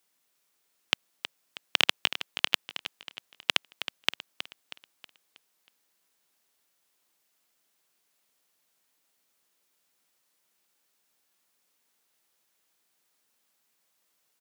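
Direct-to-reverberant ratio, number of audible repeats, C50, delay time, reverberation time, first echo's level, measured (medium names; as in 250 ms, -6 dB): no reverb, 4, no reverb, 319 ms, no reverb, -11.0 dB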